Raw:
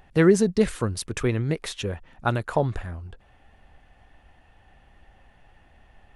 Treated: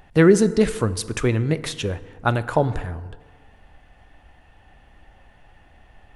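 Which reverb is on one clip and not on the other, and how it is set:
feedback delay network reverb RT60 1.5 s, low-frequency decay 0.9×, high-frequency decay 0.5×, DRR 13.5 dB
level +3.5 dB

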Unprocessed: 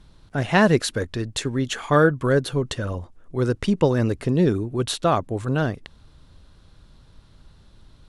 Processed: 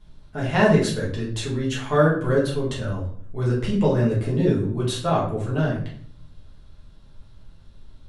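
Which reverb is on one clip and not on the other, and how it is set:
rectangular room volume 68 cubic metres, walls mixed, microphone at 1.4 metres
level −9 dB

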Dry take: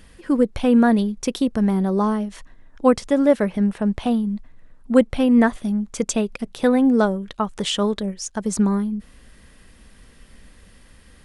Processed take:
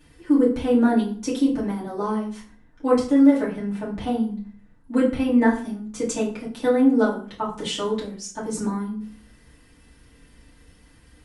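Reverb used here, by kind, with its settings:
feedback delay network reverb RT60 0.45 s, low-frequency decay 1.35×, high-frequency decay 0.75×, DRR −8 dB
level −12 dB

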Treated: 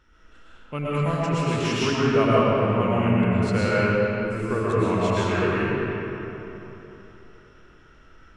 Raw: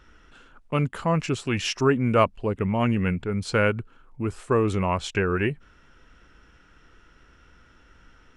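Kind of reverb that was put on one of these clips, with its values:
comb and all-pass reverb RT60 3.5 s, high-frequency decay 0.6×, pre-delay 75 ms, DRR −8.5 dB
level −7 dB

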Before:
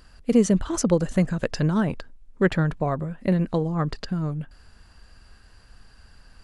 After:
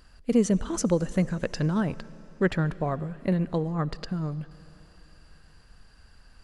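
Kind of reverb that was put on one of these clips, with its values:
comb and all-pass reverb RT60 3.7 s, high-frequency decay 1×, pre-delay 30 ms, DRR 18.5 dB
level −3.5 dB

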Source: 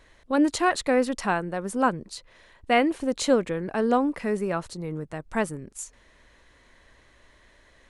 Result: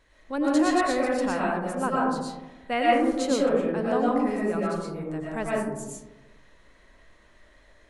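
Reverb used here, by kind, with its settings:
comb and all-pass reverb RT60 1.1 s, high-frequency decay 0.3×, pre-delay 75 ms, DRR −5.5 dB
level −7 dB

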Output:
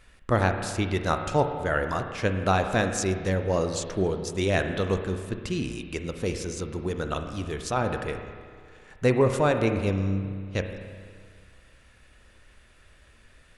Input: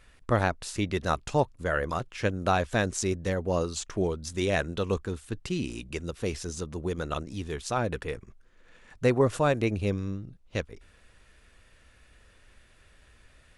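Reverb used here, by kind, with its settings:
spring reverb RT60 2 s, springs 31/53 ms, chirp 75 ms, DRR 6 dB
level +1.5 dB

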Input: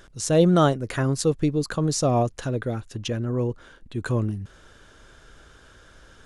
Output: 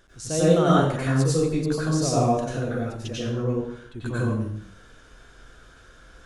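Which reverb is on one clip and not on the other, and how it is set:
dense smooth reverb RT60 0.68 s, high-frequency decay 0.85×, pre-delay 80 ms, DRR −8.5 dB
level −8.5 dB

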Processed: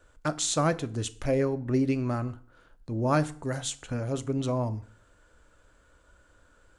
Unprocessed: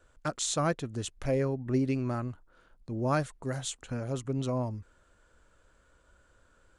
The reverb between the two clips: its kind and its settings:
feedback delay network reverb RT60 0.51 s, low-frequency decay 1.05×, high-frequency decay 0.8×, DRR 12 dB
level +3 dB

